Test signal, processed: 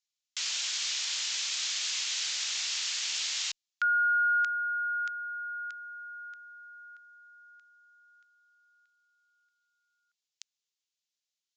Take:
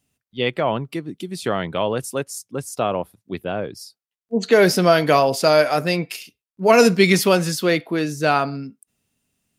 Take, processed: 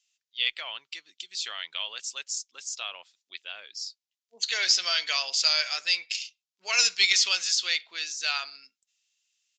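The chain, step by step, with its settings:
flat-topped band-pass 5,800 Hz, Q 0.79
harmonic generator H 2 −20 dB, 4 −30 dB, 5 −32 dB, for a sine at −10 dBFS
downsampling to 16,000 Hz
level +3.5 dB

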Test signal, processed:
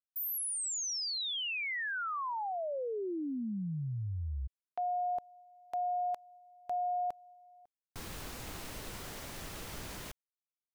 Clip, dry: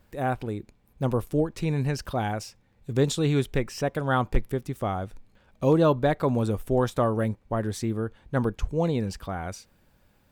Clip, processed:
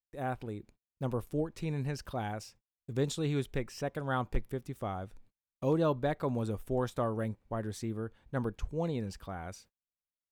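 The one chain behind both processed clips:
noise gate −49 dBFS, range −40 dB
level −8.5 dB

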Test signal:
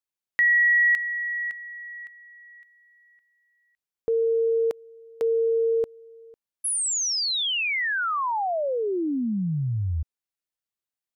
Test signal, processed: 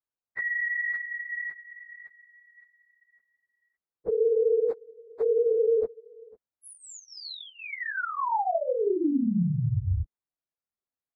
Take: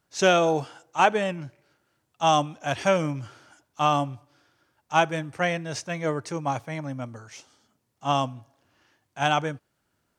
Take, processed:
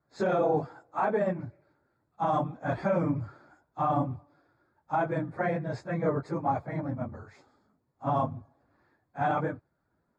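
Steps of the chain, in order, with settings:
random phases in long frames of 50 ms
brickwall limiter −16.5 dBFS
moving average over 15 samples

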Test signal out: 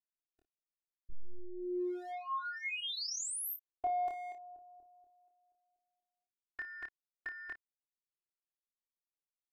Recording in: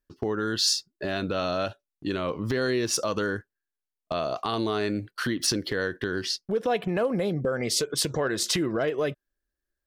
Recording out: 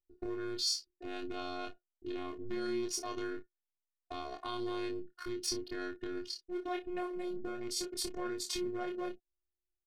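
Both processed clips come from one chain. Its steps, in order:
adaptive Wiener filter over 41 samples
phases set to zero 358 Hz
on a send: ambience of single reflections 26 ms −3 dB, 56 ms −13.5 dB
on the sum: level −8.5 dB

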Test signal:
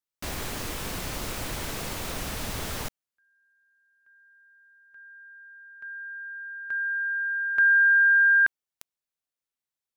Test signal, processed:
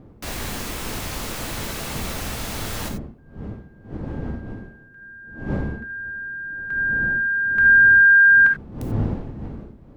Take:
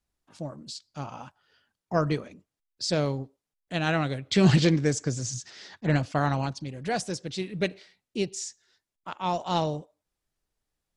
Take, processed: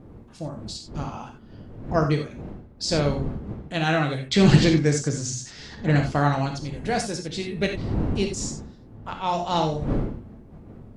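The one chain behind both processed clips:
wind on the microphone 230 Hz −37 dBFS
reverb whose tail is shaped and stops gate 110 ms flat, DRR 3 dB
level +2 dB

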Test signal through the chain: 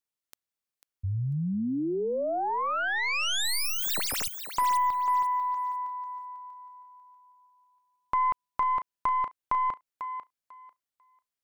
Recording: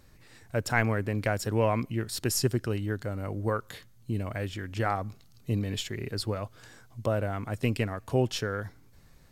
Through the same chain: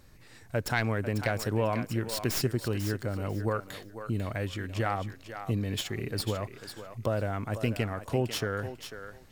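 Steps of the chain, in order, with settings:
stylus tracing distortion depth 0.1 ms
downward compressor 2 to 1, threshold −27 dBFS
on a send: feedback echo with a high-pass in the loop 495 ms, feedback 20%, high-pass 360 Hz, level −9 dB
on the sum: level +1 dB

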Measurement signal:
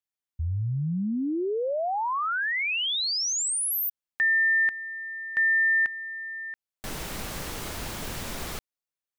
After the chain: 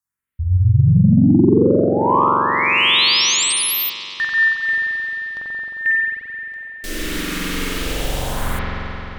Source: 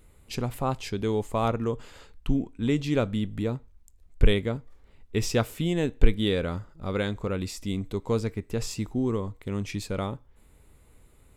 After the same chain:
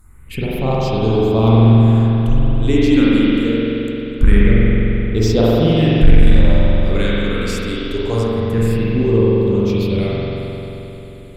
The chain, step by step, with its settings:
all-pass phaser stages 4, 0.24 Hz, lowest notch 110–2,000 Hz
spring reverb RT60 3.6 s, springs 44 ms, chirp 60 ms, DRR −8 dB
sine wavefolder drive 4 dB, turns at −0.5 dBFS
level −1 dB

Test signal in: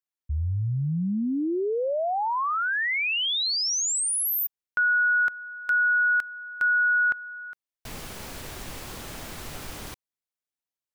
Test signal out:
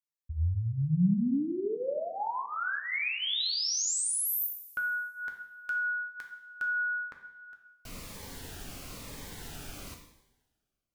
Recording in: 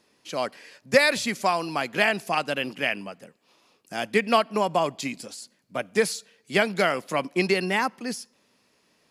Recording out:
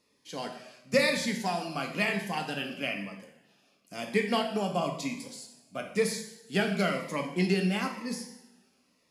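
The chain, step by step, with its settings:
dynamic equaliser 180 Hz, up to +6 dB, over −43 dBFS, Q 2
coupled-rooms reverb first 0.79 s, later 2.1 s, from −21 dB, DRR 2.5 dB
phaser whose notches keep moving one way falling 1 Hz
level −6.5 dB

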